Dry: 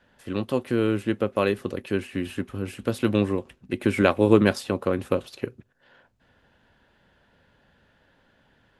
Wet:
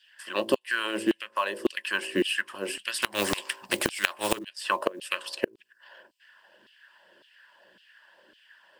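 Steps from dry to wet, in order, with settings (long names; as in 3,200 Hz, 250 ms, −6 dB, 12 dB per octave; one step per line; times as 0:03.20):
parametric band 680 Hz −6 dB 2.8 octaves
hum removal 55.36 Hz, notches 19
harmonic and percussive parts rebalanced harmonic −7 dB
EQ curve with evenly spaced ripples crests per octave 1.3, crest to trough 9 dB
0:00.98–0:01.74: downward compressor 6 to 1, threshold −33 dBFS, peak gain reduction 9.5 dB
auto-filter high-pass saw down 1.8 Hz 300–3,500 Hz
floating-point word with a short mantissa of 4 bits
gate with flip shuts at −17 dBFS, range −25 dB
0:03.02–0:04.39: every bin compressed towards the loudest bin 2 to 1
level +8.5 dB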